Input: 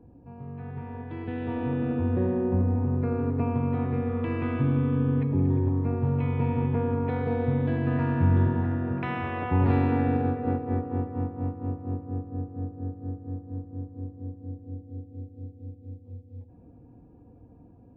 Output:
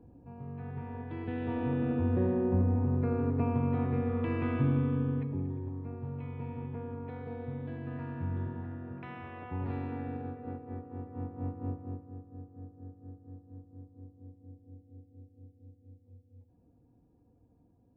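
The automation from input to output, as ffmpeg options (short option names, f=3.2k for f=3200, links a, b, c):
-af "volume=6dB,afade=t=out:st=4.65:d=0.9:silence=0.298538,afade=t=in:st=10.95:d=0.69:silence=0.354813,afade=t=out:st=11.64:d=0.47:silence=0.354813"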